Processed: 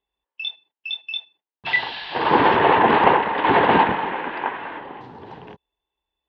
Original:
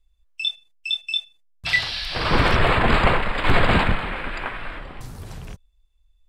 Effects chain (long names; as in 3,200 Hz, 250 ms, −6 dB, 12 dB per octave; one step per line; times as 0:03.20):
loudspeaker in its box 260–2,900 Hz, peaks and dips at 300 Hz +3 dB, 420 Hz +4 dB, 610 Hz −4 dB, 890 Hz +10 dB, 1,300 Hz −8 dB, 2,300 Hz −8 dB
level +4 dB